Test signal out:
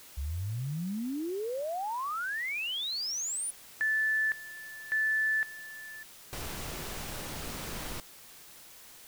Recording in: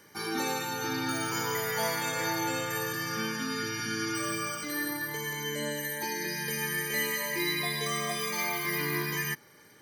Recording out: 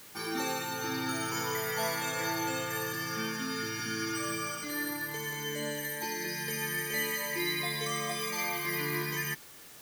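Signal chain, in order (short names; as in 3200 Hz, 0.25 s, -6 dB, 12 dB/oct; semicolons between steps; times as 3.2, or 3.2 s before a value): added noise white -50 dBFS; gain -2 dB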